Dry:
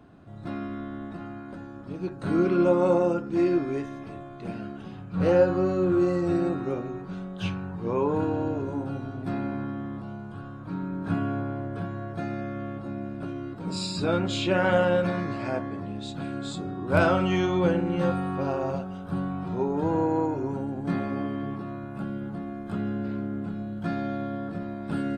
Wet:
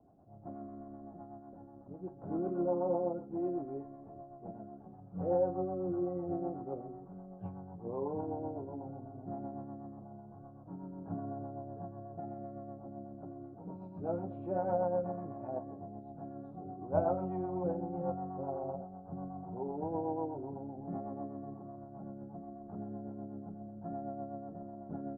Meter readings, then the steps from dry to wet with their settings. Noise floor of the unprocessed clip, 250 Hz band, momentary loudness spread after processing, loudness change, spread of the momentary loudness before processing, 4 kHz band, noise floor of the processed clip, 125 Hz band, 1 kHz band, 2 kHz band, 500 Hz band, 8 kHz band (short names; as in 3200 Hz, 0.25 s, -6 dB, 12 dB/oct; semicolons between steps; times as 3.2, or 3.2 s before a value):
-41 dBFS, -13.0 dB, 16 LU, -11.5 dB, 14 LU, under -40 dB, -53 dBFS, -13.5 dB, -8.5 dB, -29.0 dB, -10.5 dB, under -30 dB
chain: ladder low-pass 850 Hz, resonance 65%; rotary speaker horn 8 Hz; gain -1.5 dB